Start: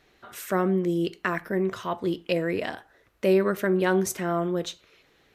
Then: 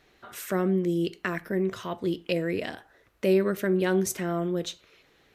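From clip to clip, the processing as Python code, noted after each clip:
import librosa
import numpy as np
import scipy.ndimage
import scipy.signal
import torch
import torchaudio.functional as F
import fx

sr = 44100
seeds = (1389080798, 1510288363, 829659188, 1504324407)

y = fx.dynamic_eq(x, sr, hz=1000.0, q=0.94, threshold_db=-39.0, ratio=4.0, max_db=-7)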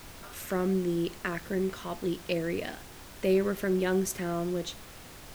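y = fx.dmg_noise_colour(x, sr, seeds[0], colour='pink', level_db=-44.0)
y = y * librosa.db_to_amplitude(-3.0)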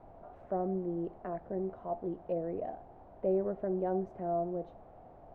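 y = fx.lowpass_res(x, sr, hz=710.0, q=4.9)
y = y * librosa.db_to_amplitude(-8.5)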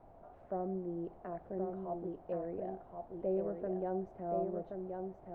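y = x + 10.0 ** (-5.0 / 20.0) * np.pad(x, (int(1076 * sr / 1000.0), 0))[:len(x)]
y = y * librosa.db_to_amplitude(-4.5)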